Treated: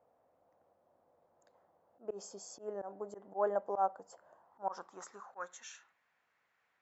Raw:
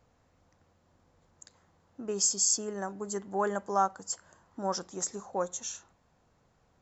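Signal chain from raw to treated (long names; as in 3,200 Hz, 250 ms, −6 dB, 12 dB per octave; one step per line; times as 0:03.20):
band-pass filter sweep 630 Hz → 2,000 Hz, 0:04.22–0:05.73
volume swells 101 ms
level +3.5 dB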